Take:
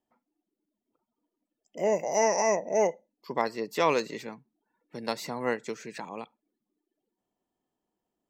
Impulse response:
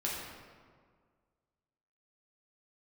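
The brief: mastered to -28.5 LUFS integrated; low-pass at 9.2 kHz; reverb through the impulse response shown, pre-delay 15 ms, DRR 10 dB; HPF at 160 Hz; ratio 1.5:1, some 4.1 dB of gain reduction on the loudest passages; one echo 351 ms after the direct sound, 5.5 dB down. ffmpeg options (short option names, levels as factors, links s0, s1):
-filter_complex "[0:a]highpass=160,lowpass=9200,acompressor=threshold=0.0282:ratio=1.5,aecho=1:1:351:0.531,asplit=2[s0][s1];[1:a]atrim=start_sample=2205,adelay=15[s2];[s1][s2]afir=irnorm=-1:irlink=0,volume=0.188[s3];[s0][s3]amix=inputs=2:normalize=0,volume=1.41"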